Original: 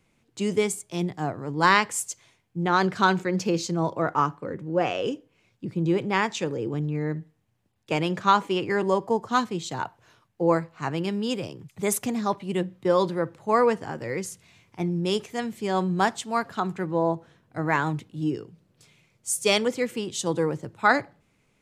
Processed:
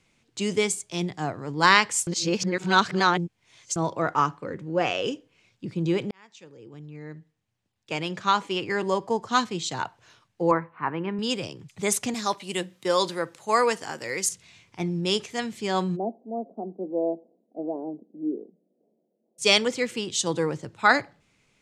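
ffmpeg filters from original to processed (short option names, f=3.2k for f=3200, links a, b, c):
-filter_complex "[0:a]asettb=1/sr,asplit=3[a][b][c];[a]atrim=end=10.514[d];[b]atrim=start=10.51:end=11.19,asetpts=PTS-STARTPTS,afade=t=in:d=0.004:c=qsin,afade=t=out:st=0.676:d=0.004:c=qsin,highpass=110,equalizer=f=140:t=q:w=4:g=-5,equalizer=f=680:t=q:w=4:g=-5,equalizer=f=1k:t=q:w=4:g=7,lowpass=f=2.1k:w=0.5412,lowpass=f=2.1k:w=1.3066[e];[c]atrim=start=11.186[f];[d][e]acrossfade=d=0.004:c1=hsin:c2=qsin[g];[g][f]acrossfade=d=0.004:c1=qsin:c2=hsin,asettb=1/sr,asplit=3[h][i][j];[h]atrim=end=12.144[k];[i]atrim=start=12.14:end=14.29,asetpts=PTS-STARTPTS,afade=t=in:d=0.004:c=qsin,afade=t=out:st=2.146:d=0.004:c=qsin,aemphasis=mode=production:type=bsi[l];[j]atrim=start=14.286[m];[k][l]acrossfade=d=0.004:c1=hsin:c2=qsin[n];[n][m]acrossfade=d=0.004:c1=qsin:c2=hsin,asplit=3[o][p][q];[o]afade=t=out:st=15.95:d=0.02[r];[p]asuperpass=centerf=380:order=12:qfactor=0.75,afade=t=in:st=15.95:d=0.02,afade=t=out:st=19.38:d=0.02[s];[q]afade=t=in:st=19.38:d=0.02[t];[r][s][t]amix=inputs=3:normalize=0,asplit=4[u][v][w][x];[u]atrim=end=2.072[y];[v]atrim=start=2.068:end=3.762,asetpts=PTS-STARTPTS,areverse[z];[w]atrim=start=3.758:end=6.11,asetpts=PTS-STARTPTS,afade=t=out:st=2.348:d=0.004:c=hsin[aa];[x]atrim=start=6.11,asetpts=PTS-STARTPTS,afade=t=in:d=3.29[ab];[y][z]acrossfade=d=0.004:c1=hsin:c2=hsin[ac];[aa][ab]concat=n=2:v=0:a=1[ad];[ac][ad]acrossfade=d=0.004:c1=hsin:c2=hsin,lowpass=7.3k,highshelf=f=2.1k:g=9.5,volume=-1.5dB"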